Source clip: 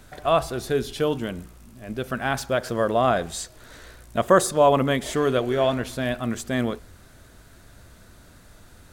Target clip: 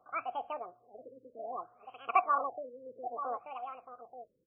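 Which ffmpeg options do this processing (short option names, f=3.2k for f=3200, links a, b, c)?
-filter_complex "[0:a]asetrate=88200,aresample=44100,asplit=3[a][b][c];[a]bandpass=f=730:t=q:w=8,volume=0dB[d];[b]bandpass=f=1.09k:t=q:w=8,volume=-6dB[e];[c]bandpass=f=2.44k:t=q:w=8,volume=-9dB[f];[d][e][f]amix=inputs=3:normalize=0,asplit=2[g][h];[h]aecho=0:1:883:0.335[i];[g][i]amix=inputs=2:normalize=0,afftfilt=real='re*lt(b*sr/1024,540*pow(3400/540,0.5+0.5*sin(2*PI*0.62*pts/sr)))':imag='im*lt(b*sr/1024,540*pow(3400/540,0.5+0.5*sin(2*PI*0.62*pts/sr)))':win_size=1024:overlap=0.75,volume=-2.5dB"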